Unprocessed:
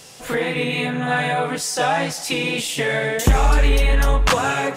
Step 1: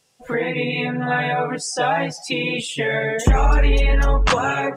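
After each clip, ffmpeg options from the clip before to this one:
ffmpeg -i in.wav -af "afftdn=noise_reduction=21:noise_floor=-28" out.wav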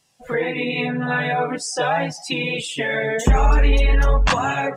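ffmpeg -i in.wav -af "flanger=delay=1:depth=3.8:regen=-45:speed=0.45:shape=sinusoidal,volume=3.5dB" out.wav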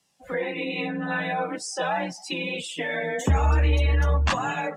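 ffmpeg -i in.wav -af "afreqshift=25,volume=-6dB" out.wav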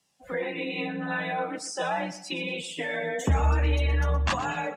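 ffmpeg -i in.wav -af "aecho=1:1:120|240|360:0.178|0.0533|0.016,volume=-2.5dB" out.wav

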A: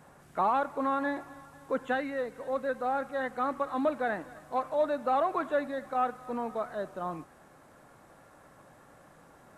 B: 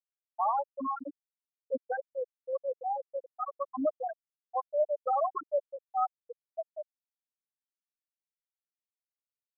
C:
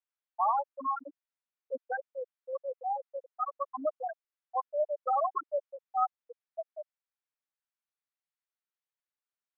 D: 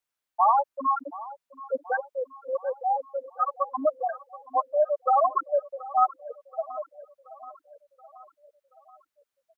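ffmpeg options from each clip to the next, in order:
ffmpeg -i in.wav -af "afftfilt=real='re*gte(hypot(re,im),0.251)':imag='im*gte(hypot(re,im),0.251)':win_size=1024:overlap=0.75" out.wav
ffmpeg -i in.wav -af "bandpass=frequency=1400:width_type=q:width=0.79:csg=0,volume=3dB" out.wav
ffmpeg -i in.wav -af "aecho=1:1:728|1456|2184|2912|3640:0.126|0.068|0.0367|0.0198|0.0107,volume=7.5dB" out.wav

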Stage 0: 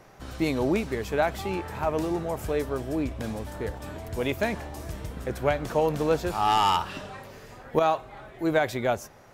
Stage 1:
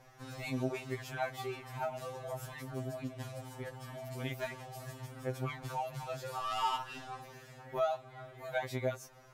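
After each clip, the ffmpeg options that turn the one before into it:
ffmpeg -i in.wav -af "equalizer=frequency=340:width_type=o:width=1.1:gain=-6,acompressor=threshold=-35dB:ratio=1.5,afftfilt=real='re*2.45*eq(mod(b,6),0)':imag='im*2.45*eq(mod(b,6),0)':win_size=2048:overlap=0.75,volume=-3dB" out.wav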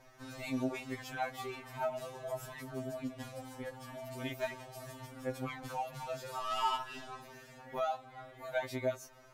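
ffmpeg -i in.wav -af "flanger=delay=3.2:depth=1.5:regen=22:speed=0.22:shape=sinusoidal,volume=3.5dB" out.wav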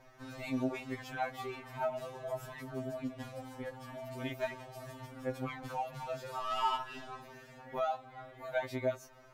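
ffmpeg -i in.wav -af "equalizer=frequency=10000:width_type=o:width=2.1:gain=-6.5,volume=1dB" out.wav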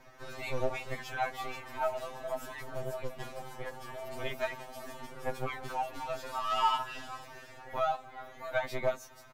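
ffmpeg -i in.wav -filter_complex "[0:a]acrossover=split=490|4900[link_01][link_02][link_03];[link_01]aeval=exprs='abs(val(0))':channel_layout=same[link_04];[link_03]aecho=1:1:483:0.562[link_05];[link_04][link_02][link_05]amix=inputs=3:normalize=0,volume=4.5dB" out.wav

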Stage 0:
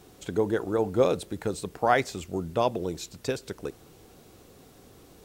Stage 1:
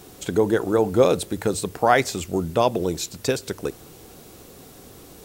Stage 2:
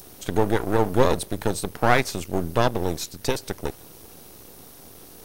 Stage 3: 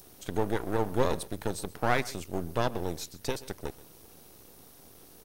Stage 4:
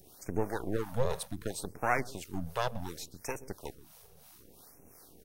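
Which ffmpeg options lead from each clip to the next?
ffmpeg -i in.wav -filter_complex "[0:a]highshelf=frequency=6900:gain=6.5,bandreject=frequency=50:width_type=h:width=6,bandreject=frequency=100:width_type=h:width=6,asplit=2[link_01][link_02];[link_02]alimiter=limit=-16.5dB:level=0:latency=1:release=115,volume=-3dB[link_03];[link_01][link_03]amix=inputs=2:normalize=0,volume=2.5dB" out.wav
ffmpeg -i in.wav -filter_complex "[0:a]equalizer=frequency=7400:width_type=o:width=0.24:gain=-9.5,acrossover=split=4900[link_01][link_02];[link_01]aeval=exprs='max(val(0),0)':channel_layout=same[link_03];[link_02]acompressor=mode=upward:threshold=-45dB:ratio=2.5[link_04];[link_03][link_04]amix=inputs=2:normalize=0,volume=1.5dB" out.wav
ffmpeg -i in.wav -af "aecho=1:1:129:0.1,volume=-8dB" out.wav
ffmpeg -i in.wav -filter_complex "[0:a]acrossover=split=580[link_01][link_02];[link_01]aeval=exprs='val(0)*(1-0.7/2+0.7/2*cos(2*PI*2.9*n/s))':channel_layout=same[link_03];[link_02]aeval=exprs='val(0)*(1-0.7/2-0.7/2*cos(2*PI*2.9*n/s))':channel_layout=same[link_04];[link_03][link_04]amix=inputs=2:normalize=0,afftfilt=real='re*(1-between(b*sr/1024,260*pow(4000/260,0.5+0.5*sin(2*PI*0.67*pts/sr))/1.41,260*pow(4000/260,0.5+0.5*sin(2*PI*0.67*pts/sr))*1.41))':imag='im*(1-between(b*sr/1024,260*pow(4000/260,0.5+0.5*sin(2*PI*0.67*pts/sr))/1.41,260*pow(4000/260,0.5+0.5*sin(2*PI*0.67*pts/sr))*1.41))':win_size=1024:overlap=0.75" out.wav

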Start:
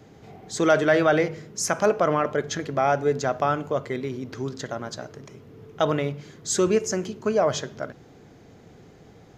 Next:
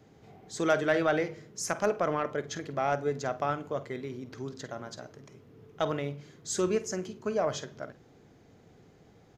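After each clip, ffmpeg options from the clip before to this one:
ffmpeg -i in.wav -filter_complex "[0:a]asplit=2[link_01][link_02];[link_02]adelay=49,volume=-14dB[link_03];[link_01][link_03]amix=inputs=2:normalize=0,aeval=exprs='0.447*(cos(1*acos(clip(val(0)/0.447,-1,1)))-cos(1*PI/2))+0.0398*(cos(3*acos(clip(val(0)/0.447,-1,1)))-cos(3*PI/2))':channel_layout=same,volume=-5.5dB" out.wav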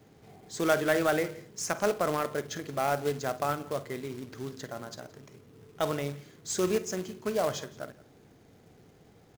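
ffmpeg -i in.wav -af "acrusher=bits=3:mode=log:mix=0:aa=0.000001,aecho=1:1:171:0.0841" out.wav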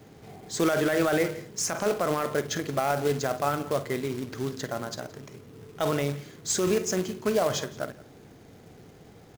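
ffmpeg -i in.wav -af "alimiter=limit=-22.5dB:level=0:latency=1:release=20,volume=7dB" out.wav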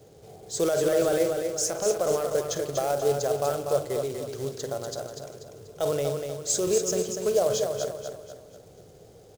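ffmpeg -i in.wav -af "equalizer=frequency=250:width_type=o:width=1:gain=-11,equalizer=frequency=500:width_type=o:width=1:gain=9,equalizer=frequency=1000:width_type=o:width=1:gain=-6,equalizer=frequency=2000:width_type=o:width=1:gain=-9,equalizer=frequency=8000:width_type=o:width=1:gain=4,aecho=1:1:243|486|729|972|1215:0.501|0.21|0.0884|0.0371|0.0156,volume=-1dB" out.wav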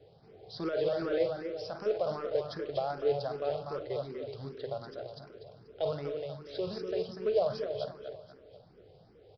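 ffmpeg -i in.wav -filter_complex "[0:a]aresample=11025,aresample=44100,asplit=2[link_01][link_02];[link_02]afreqshift=2.6[link_03];[link_01][link_03]amix=inputs=2:normalize=1,volume=-4dB" out.wav

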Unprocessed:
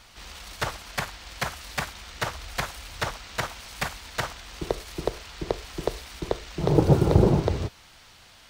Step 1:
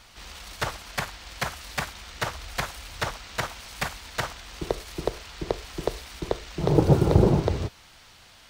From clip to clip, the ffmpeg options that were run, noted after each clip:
ffmpeg -i in.wav -af anull out.wav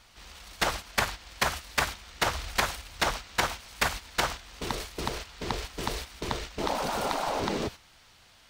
ffmpeg -i in.wav -af "agate=range=-10dB:threshold=-38dB:ratio=16:detection=peak,afftfilt=real='re*lt(hypot(re,im),0.178)':imag='im*lt(hypot(re,im),0.178)':win_size=1024:overlap=0.75,volume=4.5dB" out.wav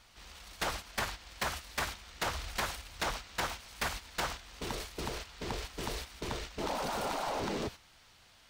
ffmpeg -i in.wav -af "asoftclip=type=tanh:threshold=-23.5dB,volume=-3.5dB" out.wav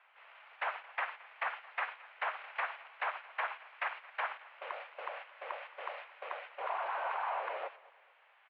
ffmpeg -i in.wav -af "aecho=1:1:220|440|660:0.0841|0.0328|0.0128,highpass=frequency=450:width_type=q:width=0.5412,highpass=frequency=450:width_type=q:width=1.307,lowpass=frequency=2500:width_type=q:width=0.5176,lowpass=frequency=2500:width_type=q:width=0.7071,lowpass=frequency=2500:width_type=q:width=1.932,afreqshift=130" out.wav

